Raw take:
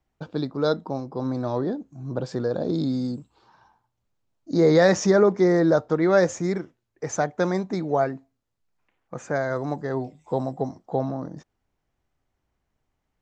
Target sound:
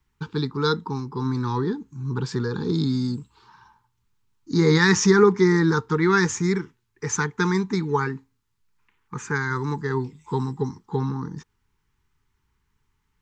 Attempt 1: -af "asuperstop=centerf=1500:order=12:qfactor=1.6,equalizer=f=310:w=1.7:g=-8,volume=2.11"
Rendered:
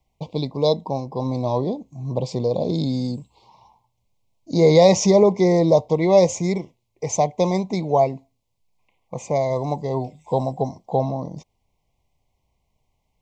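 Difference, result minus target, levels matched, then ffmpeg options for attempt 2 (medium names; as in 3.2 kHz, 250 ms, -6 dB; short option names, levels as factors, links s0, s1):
2 kHz band -14.5 dB
-af "asuperstop=centerf=620:order=12:qfactor=1.6,equalizer=f=310:w=1.7:g=-8,volume=2.11"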